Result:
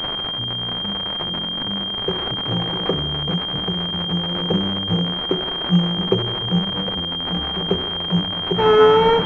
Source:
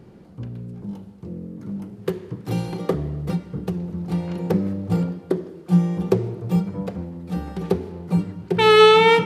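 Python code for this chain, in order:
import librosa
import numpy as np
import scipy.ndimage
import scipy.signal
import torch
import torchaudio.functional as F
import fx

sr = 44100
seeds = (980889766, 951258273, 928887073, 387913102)

y = x + 0.5 * 10.0 ** (-8.5 / 20.0) * np.diff(np.sign(x), prepend=np.sign(x[:1]))
y = fx.pwm(y, sr, carrier_hz=3200.0)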